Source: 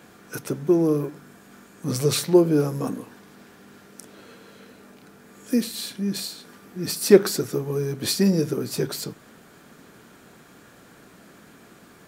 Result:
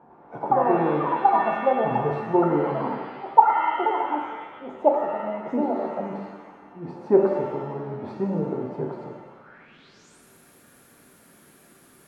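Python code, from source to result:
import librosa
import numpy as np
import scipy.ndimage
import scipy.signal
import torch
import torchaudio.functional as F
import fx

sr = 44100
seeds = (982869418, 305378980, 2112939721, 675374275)

y = fx.echo_pitch(x, sr, ms=103, semitones=7, count=3, db_per_echo=-3.0)
y = fx.filter_sweep_lowpass(y, sr, from_hz=880.0, to_hz=11000.0, start_s=9.29, end_s=10.24, q=7.0)
y = fx.rev_shimmer(y, sr, seeds[0], rt60_s=1.2, semitones=7, shimmer_db=-8, drr_db=1.5)
y = y * librosa.db_to_amplitude(-8.0)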